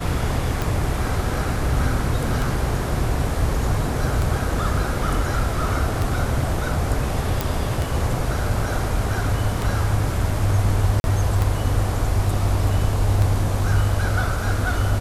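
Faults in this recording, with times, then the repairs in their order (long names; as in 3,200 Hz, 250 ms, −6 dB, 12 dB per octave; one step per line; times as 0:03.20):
scratch tick 33 1/3 rpm
0:07.41: click
0:11.00–0:11.04: drop-out 41 ms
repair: click removal
repair the gap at 0:11.00, 41 ms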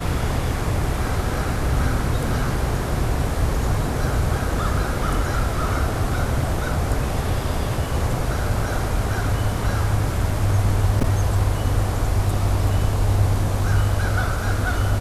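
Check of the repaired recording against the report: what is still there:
none of them is left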